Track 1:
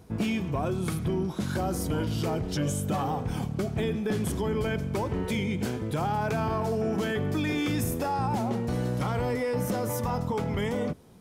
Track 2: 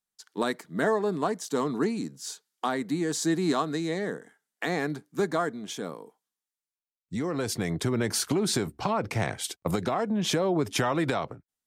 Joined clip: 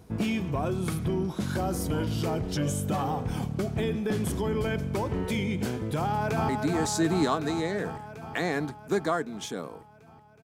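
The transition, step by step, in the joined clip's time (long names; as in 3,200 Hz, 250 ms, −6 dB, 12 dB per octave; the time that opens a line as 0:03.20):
track 1
0:05.99–0:06.49: delay throw 370 ms, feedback 75%, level −4 dB
0:06.49: continue with track 2 from 0:02.76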